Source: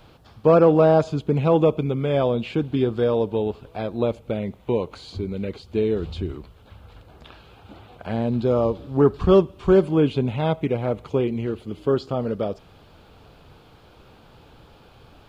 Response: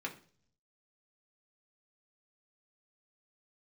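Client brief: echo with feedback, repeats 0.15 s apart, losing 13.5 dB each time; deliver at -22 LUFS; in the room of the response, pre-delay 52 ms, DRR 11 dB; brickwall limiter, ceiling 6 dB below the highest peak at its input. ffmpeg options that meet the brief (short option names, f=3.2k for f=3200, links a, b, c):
-filter_complex "[0:a]alimiter=limit=-11dB:level=0:latency=1,aecho=1:1:150|300:0.211|0.0444,asplit=2[a][b];[1:a]atrim=start_sample=2205,adelay=52[c];[b][c]afir=irnorm=-1:irlink=0,volume=-12.5dB[d];[a][d]amix=inputs=2:normalize=0,volume=1.5dB"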